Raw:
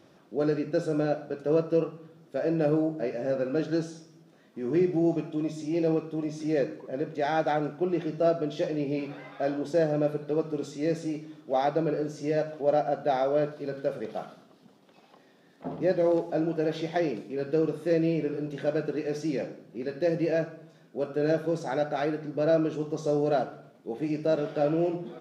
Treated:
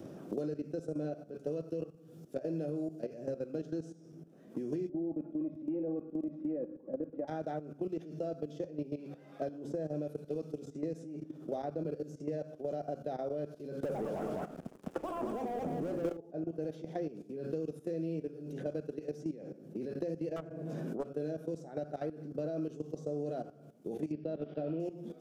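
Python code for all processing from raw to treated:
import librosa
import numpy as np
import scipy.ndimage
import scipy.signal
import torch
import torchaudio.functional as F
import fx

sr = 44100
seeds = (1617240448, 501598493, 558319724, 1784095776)

y = fx.chain(x, sr, fx.lowpass(hz=1100.0, slope=24),
    fx.comb(ms=3.6, depth=0.66), at=(4.89, 7.28))
y = fx.chain(y, sr, fx.echo_pitch(ms=108, semitones=6, count=2, db_per_echo=-6.0),
    fx.leveller(passes=5),
    fx.echo_single(ms=210, db=-3.5), at=(13.83, 16.17))
y = fx.chain(y, sr, fx.self_delay(depth_ms=0.51),
    fx.pre_swell(db_per_s=28.0), at=(20.36, 21.09))
y = fx.chain(y, sr, fx.lowpass(hz=3800.0, slope=24),
    fx.peak_eq(hz=230.0, db=3.5, octaves=0.54), at=(24.12, 24.8))
y = fx.level_steps(y, sr, step_db=14)
y = fx.graphic_eq_10(y, sr, hz=(1000, 2000, 4000), db=(-10, -10, -10))
y = fx.band_squash(y, sr, depth_pct=100)
y = F.gain(torch.from_numpy(y), -5.5).numpy()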